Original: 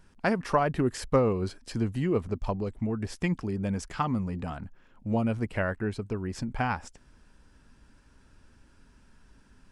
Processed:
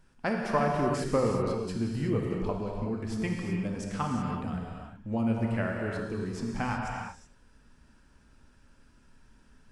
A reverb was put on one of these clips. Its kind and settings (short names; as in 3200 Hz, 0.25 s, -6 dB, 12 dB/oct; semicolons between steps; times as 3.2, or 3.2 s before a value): non-linear reverb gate 0.4 s flat, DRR -0.5 dB; gain -4.5 dB